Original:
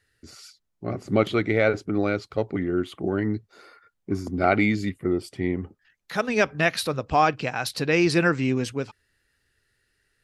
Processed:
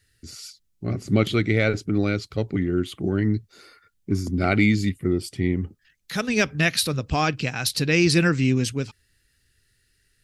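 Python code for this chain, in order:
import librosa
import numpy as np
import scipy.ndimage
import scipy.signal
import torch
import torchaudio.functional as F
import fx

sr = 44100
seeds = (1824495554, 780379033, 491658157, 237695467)

y = fx.peak_eq(x, sr, hz=800.0, db=-14.5, octaves=2.7)
y = y * librosa.db_to_amplitude(8.5)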